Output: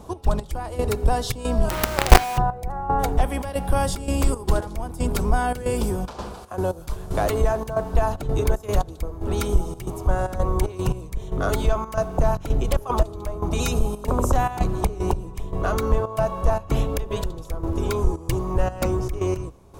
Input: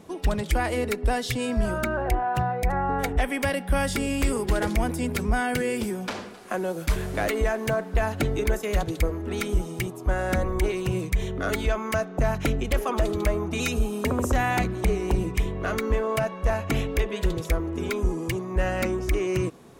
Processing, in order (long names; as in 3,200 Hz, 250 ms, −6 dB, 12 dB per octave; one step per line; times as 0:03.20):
sub-octave generator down 2 octaves, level +1 dB
octave-band graphic EQ 250/1,000/2,000 Hz −4/+7/−12 dB
four-comb reverb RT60 2.9 s, combs from 29 ms, DRR 19.5 dB
gate pattern "x.x...xxxx.xxx.x" 114 BPM −12 dB
in parallel at +0.5 dB: downward compressor 6 to 1, threshold −26 dBFS, peak gain reduction 13 dB
0:01.69–0:02.38: on the sum: log-companded quantiser 2 bits
level −1 dB